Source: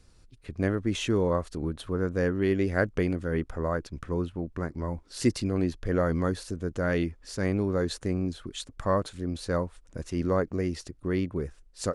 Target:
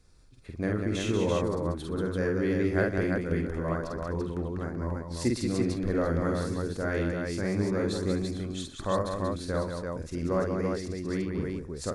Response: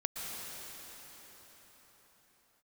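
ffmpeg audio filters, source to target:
-af "bandreject=frequency=2900:width=10,aecho=1:1:48|122|186|256|339:0.708|0.15|0.531|0.168|0.668,volume=-4dB"

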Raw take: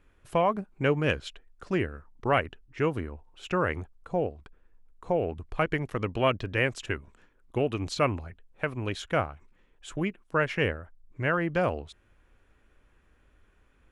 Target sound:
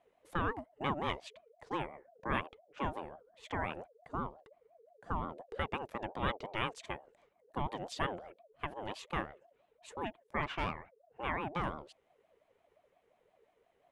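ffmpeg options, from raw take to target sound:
ffmpeg -i in.wav -filter_complex "[0:a]asplit=3[link_01][link_02][link_03];[link_01]afade=type=out:start_time=10.42:duration=0.02[link_04];[link_02]asplit=2[link_05][link_06];[link_06]highpass=frequency=720:poles=1,volume=16dB,asoftclip=type=tanh:threshold=-13.5dB[link_07];[link_05][link_07]amix=inputs=2:normalize=0,lowpass=frequency=1200:poles=1,volume=-6dB,afade=type=in:start_time=10.42:duration=0.02,afade=type=out:start_time=11.21:duration=0.02[link_08];[link_03]afade=type=in:start_time=11.21:duration=0.02[link_09];[link_04][link_08][link_09]amix=inputs=3:normalize=0,aeval=exprs='val(0)*sin(2*PI*570*n/s+570*0.25/5.7*sin(2*PI*5.7*n/s))':channel_layout=same,volume=-7dB" out.wav

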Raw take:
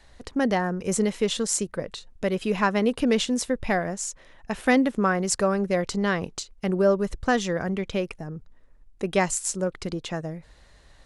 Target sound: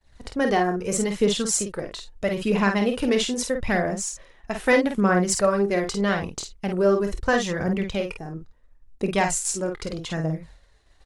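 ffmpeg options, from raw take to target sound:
ffmpeg -i in.wav -filter_complex "[0:a]agate=range=-33dB:threshold=-45dB:ratio=3:detection=peak,aphaser=in_gain=1:out_gain=1:delay=3.1:decay=0.44:speed=0.78:type=triangular,asplit=2[link_01][link_02];[link_02]aecho=0:1:25|50:0.2|0.531[link_03];[link_01][link_03]amix=inputs=2:normalize=0" out.wav

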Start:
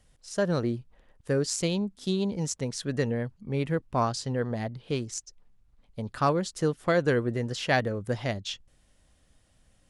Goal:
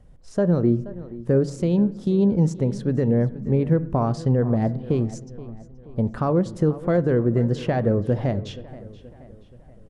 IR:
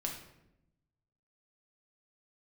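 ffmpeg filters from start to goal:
-filter_complex "[0:a]alimiter=limit=-21.5dB:level=0:latency=1:release=164,tiltshelf=frequency=1300:gain=10,asplit=2[link_01][link_02];[link_02]adelay=477,lowpass=frequency=4700:poles=1,volume=-17dB,asplit=2[link_03][link_04];[link_04]adelay=477,lowpass=frequency=4700:poles=1,volume=0.5,asplit=2[link_05][link_06];[link_06]adelay=477,lowpass=frequency=4700:poles=1,volume=0.5,asplit=2[link_07][link_08];[link_08]adelay=477,lowpass=frequency=4700:poles=1,volume=0.5[link_09];[link_01][link_03][link_05][link_07][link_09]amix=inputs=5:normalize=0,asplit=2[link_10][link_11];[1:a]atrim=start_sample=2205,lowpass=3000[link_12];[link_11][link_12]afir=irnorm=-1:irlink=0,volume=-12dB[link_13];[link_10][link_13]amix=inputs=2:normalize=0,volume=1.5dB"

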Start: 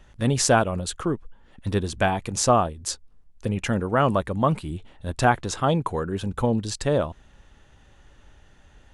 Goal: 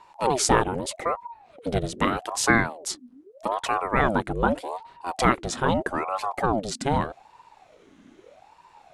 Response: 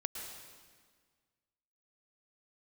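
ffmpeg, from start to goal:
-filter_complex "[0:a]asettb=1/sr,asplit=3[link_01][link_02][link_03];[link_01]atrim=end=5.204[link_04];[link_02]atrim=start=5.2:end=6.37,asetpts=PTS-STARTPTS,afade=type=in:duration=0.004:curve=qsin,afade=type=out:start_time=1.166:duration=0.004:curve=qsin,acompressor=mode=upward:threshold=-22dB:ratio=2.5[link_05];[link_03]atrim=start=6.366[link_06];[link_04][link_05]acrossfade=duration=0.004:curve1=hsin:curve2=qsin[link_07];[link_07][link_06]acrossfade=duration=0.004:curve1=qsin:curve2=hsin,aeval=exprs='val(0)*sin(2*PI*600*n/s+600*0.6/0.81*sin(2*PI*0.81*n/s))':channel_layout=same,volume=1.5dB"

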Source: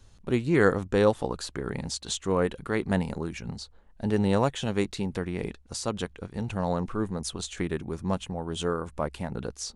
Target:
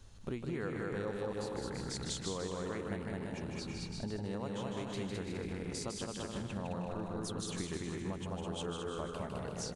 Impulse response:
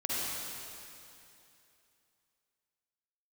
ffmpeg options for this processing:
-filter_complex "[0:a]asplit=2[link_01][link_02];[link_02]aecho=0:1:210|336|411.6|457|484.2:0.631|0.398|0.251|0.158|0.1[link_03];[link_01][link_03]amix=inputs=2:normalize=0,acompressor=threshold=-36dB:ratio=6,asplit=2[link_04][link_05];[link_05]aecho=0:1:155|310|465|620:0.562|0.186|0.0612|0.0202[link_06];[link_04][link_06]amix=inputs=2:normalize=0,volume=-1.5dB"

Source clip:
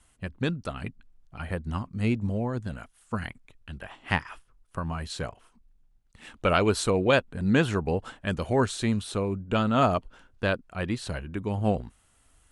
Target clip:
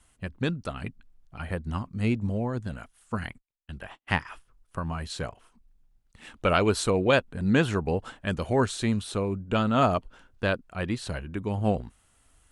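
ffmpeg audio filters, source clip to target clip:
ffmpeg -i in.wav -filter_complex "[0:a]asettb=1/sr,asplit=3[link_01][link_02][link_03];[link_01]atrim=end=3.174[link_04];[link_02]atrim=start=3.17:end=4.21,asetpts=PTS-STARTPTS,afade=type=in:duration=0.004:curve=qsin,afade=type=out:start_time=1.036:duration=0.004:curve=qsin,agate=range=-41dB:threshold=-44dB:ratio=16:detection=peak[link_05];[link_03]atrim=start=4.206[link_06];[link_04][link_05]acrossfade=duration=0.004:curve1=hsin:curve2=qsin[link_07];[link_07][link_06]acrossfade=duration=0.004:curve1=qsin:curve2=hsin" out.wav

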